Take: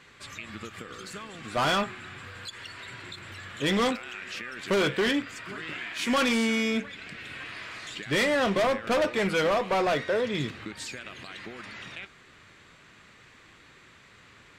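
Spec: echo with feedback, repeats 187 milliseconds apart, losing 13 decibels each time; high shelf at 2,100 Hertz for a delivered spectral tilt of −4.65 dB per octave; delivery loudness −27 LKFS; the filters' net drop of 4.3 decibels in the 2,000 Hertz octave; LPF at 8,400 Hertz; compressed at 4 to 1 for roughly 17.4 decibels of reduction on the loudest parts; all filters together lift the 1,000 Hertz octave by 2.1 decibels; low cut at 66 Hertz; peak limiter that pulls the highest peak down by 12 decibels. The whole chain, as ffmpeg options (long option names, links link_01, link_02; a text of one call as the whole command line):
ffmpeg -i in.wav -af "highpass=66,lowpass=8400,equalizer=frequency=1000:width_type=o:gain=5.5,equalizer=frequency=2000:width_type=o:gain=-3,highshelf=frequency=2100:gain=-7.5,acompressor=threshold=-43dB:ratio=4,alimiter=level_in=16dB:limit=-24dB:level=0:latency=1,volume=-16dB,aecho=1:1:187|374|561:0.224|0.0493|0.0108,volume=21.5dB" out.wav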